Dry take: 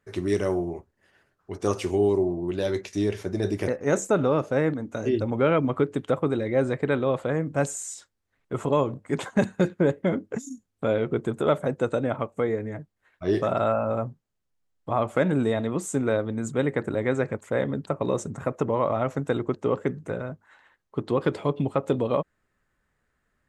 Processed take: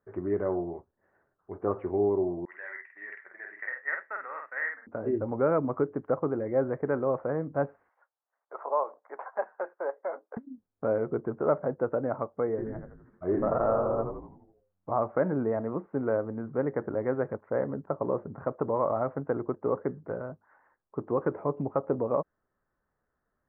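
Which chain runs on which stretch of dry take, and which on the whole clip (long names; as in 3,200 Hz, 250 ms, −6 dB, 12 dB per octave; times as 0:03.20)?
0:02.45–0:04.87: noise gate −33 dBFS, range −7 dB + high-pass with resonance 1,900 Hz, resonance Q 12 + double-tracking delay 49 ms −4 dB
0:07.89–0:10.37: high-pass filter 670 Hz 24 dB per octave + tilt shelving filter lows +6 dB, about 1,500 Hz
0:12.49–0:14.94: bad sample-rate conversion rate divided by 8×, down none, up hold + echo with shifted repeats 84 ms, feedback 52%, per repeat −92 Hz, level −5 dB
whole clip: Bessel low-pass filter 910 Hz, order 8; low-shelf EQ 400 Hz −11.5 dB; level +2.5 dB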